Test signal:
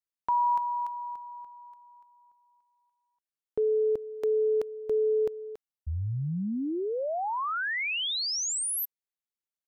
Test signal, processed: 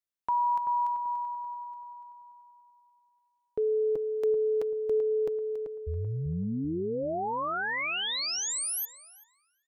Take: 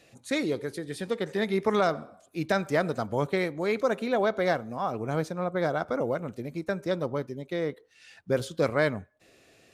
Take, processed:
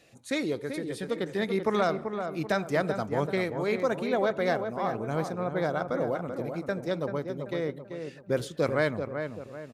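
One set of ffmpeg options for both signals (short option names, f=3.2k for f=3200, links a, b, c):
-filter_complex "[0:a]asplit=2[a][b];[b]adelay=386,lowpass=f=1.7k:p=1,volume=-6.5dB,asplit=2[c][d];[d]adelay=386,lowpass=f=1.7k:p=1,volume=0.42,asplit=2[e][f];[f]adelay=386,lowpass=f=1.7k:p=1,volume=0.42,asplit=2[g][h];[h]adelay=386,lowpass=f=1.7k:p=1,volume=0.42,asplit=2[i][j];[j]adelay=386,lowpass=f=1.7k:p=1,volume=0.42[k];[a][c][e][g][i][k]amix=inputs=6:normalize=0,volume=-1.5dB"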